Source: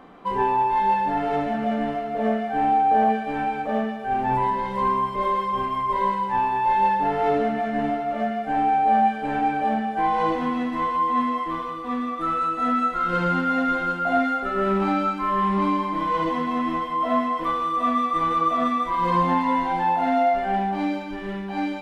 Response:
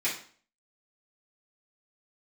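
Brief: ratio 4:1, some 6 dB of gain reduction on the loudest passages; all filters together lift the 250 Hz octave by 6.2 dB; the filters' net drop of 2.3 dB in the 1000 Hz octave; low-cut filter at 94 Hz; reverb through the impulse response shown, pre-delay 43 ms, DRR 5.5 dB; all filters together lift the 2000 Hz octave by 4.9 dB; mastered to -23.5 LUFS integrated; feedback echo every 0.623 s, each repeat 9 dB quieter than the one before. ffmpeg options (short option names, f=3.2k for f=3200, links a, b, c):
-filter_complex "[0:a]highpass=94,equalizer=f=250:t=o:g=7.5,equalizer=f=1k:t=o:g=-5.5,equalizer=f=2k:t=o:g=8,acompressor=threshold=-22dB:ratio=4,aecho=1:1:623|1246|1869|2492:0.355|0.124|0.0435|0.0152,asplit=2[a][b];[1:a]atrim=start_sample=2205,adelay=43[c];[b][c]afir=irnorm=-1:irlink=0,volume=-14.5dB[d];[a][d]amix=inputs=2:normalize=0,volume=1dB"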